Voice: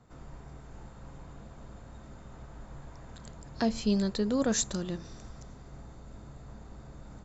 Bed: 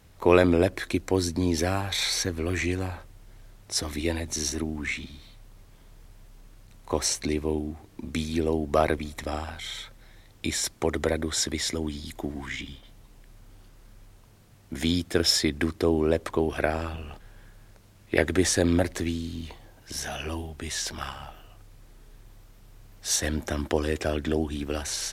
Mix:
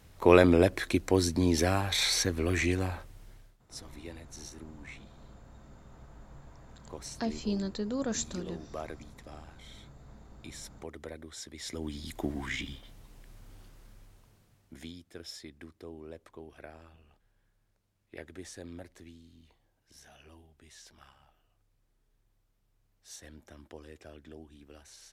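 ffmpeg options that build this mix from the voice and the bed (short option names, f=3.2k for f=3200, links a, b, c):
-filter_complex "[0:a]adelay=3600,volume=-5dB[a];[1:a]volume=15.5dB,afade=t=out:st=3.26:d=0.31:silence=0.149624,afade=t=in:st=11.54:d=0.72:silence=0.149624,afade=t=out:st=13.61:d=1.32:silence=0.0841395[b];[a][b]amix=inputs=2:normalize=0"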